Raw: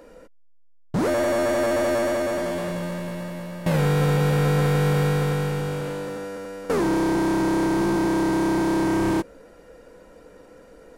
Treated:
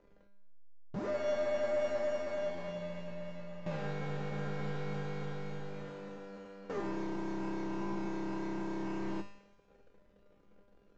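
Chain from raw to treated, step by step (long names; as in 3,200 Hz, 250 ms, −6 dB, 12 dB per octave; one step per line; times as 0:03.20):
high-shelf EQ 5,400 Hz −10.5 dB
mains-hum notches 50/100/150/200/250/300/350/400/450/500 Hz
in parallel at −2.5 dB: downward compressor, threshold −30 dBFS, peak gain reduction 11 dB
on the sum: slack as between gear wheels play −36 dBFS
tuned comb filter 200 Hz, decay 0.82 s, harmonics all, mix 90%
on a send: delay with a high-pass on its return 111 ms, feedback 65%, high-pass 1,900 Hz, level −17 dB
on the sum: downsampling to 16,000 Hz
level −1 dB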